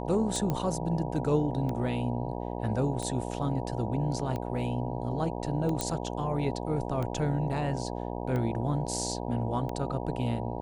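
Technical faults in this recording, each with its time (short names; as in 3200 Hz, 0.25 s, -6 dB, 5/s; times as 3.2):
buzz 60 Hz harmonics 16 -35 dBFS
tick 45 rpm
0.5 pop -17 dBFS
5.81 pop -13 dBFS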